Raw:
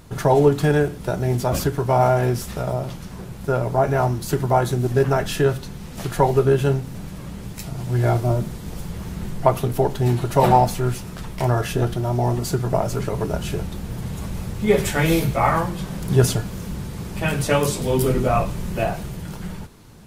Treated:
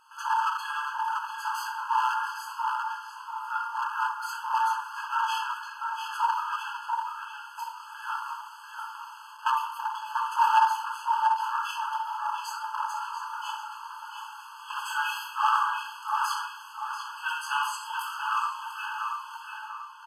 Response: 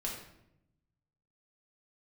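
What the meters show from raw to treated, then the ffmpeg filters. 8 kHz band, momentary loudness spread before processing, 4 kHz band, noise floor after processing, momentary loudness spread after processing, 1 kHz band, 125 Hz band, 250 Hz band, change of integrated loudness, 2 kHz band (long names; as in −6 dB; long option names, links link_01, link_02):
−11.5 dB, 15 LU, −4.0 dB, −45 dBFS, 13 LU, −1.5 dB, below −40 dB, below −40 dB, −8.5 dB, −1.5 dB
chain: -filter_complex "[0:a]highshelf=frequency=4500:gain=-12,aresample=32000,aresample=44100,asplit=2[link_01][link_02];[link_02]adelay=690,lowpass=frequency=3700:poles=1,volume=-5dB,asplit=2[link_03][link_04];[link_04]adelay=690,lowpass=frequency=3700:poles=1,volume=0.42,asplit=2[link_05][link_06];[link_06]adelay=690,lowpass=frequency=3700:poles=1,volume=0.42,asplit=2[link_07][link_08];[link_08]adelay=690,lowpass=frequency=3700:poles=1,volume=0.42,asplit=2[link_09][link_10];[link_10]adelay=690,lowpass=frequency=3700:poles=1,volume=0.42[link_11];[link_01][link_03][link_05][link_07][link_09][link_11]amix=inputs=6:normalize=0[link_12];[1:a]atrim=start_sample=2205[link_13];[link_12][link_13]afir=irnorm=-1:irlink=0,asoftclip=type=hard:threshold=-11.5dB,afftfilt=real='re*eq(mod(floor(b*sr/1024/850),2),1)':imag='im*eq(mod(floor(b*sr/1024/850),2),1)':win_size=1024:overlap=0.75"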